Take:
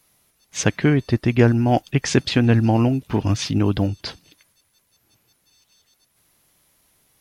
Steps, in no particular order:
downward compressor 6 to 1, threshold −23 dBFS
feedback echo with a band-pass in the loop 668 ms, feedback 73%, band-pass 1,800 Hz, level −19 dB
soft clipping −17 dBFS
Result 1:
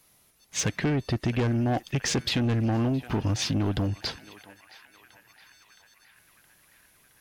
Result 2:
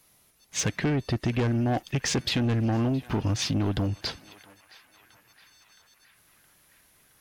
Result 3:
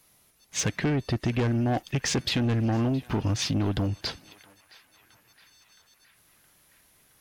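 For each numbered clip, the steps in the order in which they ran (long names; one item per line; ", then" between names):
feedback echo with a band-pass in the loop, then soft clipping, then downward compressor
soft clipping, then feedback echo with a band-pass in the loop, then downward compressor
soft clipping, then downward compressor, then feedback echo with a band-pass in the loop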